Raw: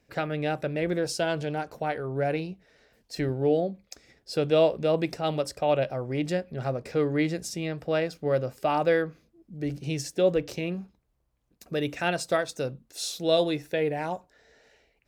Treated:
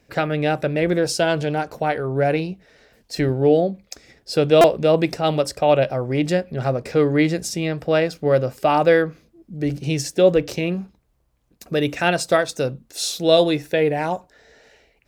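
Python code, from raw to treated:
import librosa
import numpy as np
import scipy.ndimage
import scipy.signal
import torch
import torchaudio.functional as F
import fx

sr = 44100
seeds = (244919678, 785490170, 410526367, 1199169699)

y = fx.buffer_glitch(x, sr, at_s=(4.61,), block=128, repeats=10)
y = y * 10.0 ** (8.0 / 20.0)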